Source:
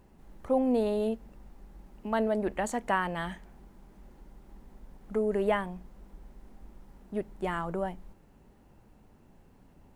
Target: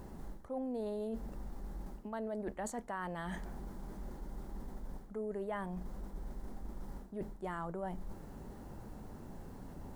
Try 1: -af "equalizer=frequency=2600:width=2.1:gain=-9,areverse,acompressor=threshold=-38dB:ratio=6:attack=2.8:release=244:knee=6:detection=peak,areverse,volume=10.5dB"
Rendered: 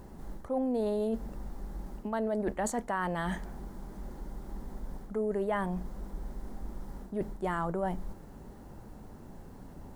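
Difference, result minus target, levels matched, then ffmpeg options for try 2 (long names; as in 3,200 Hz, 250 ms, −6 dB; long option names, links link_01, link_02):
downward compressor: peak gain reduction −8.5 dB
-af "equalizer=frequency=2600:width=2.1:gain=-9,areverse,acompressor=threshold=-48dB:ratio=6:attack=2.8:release=244:knee=6:detection=peak,areverse,volume=10.5dB"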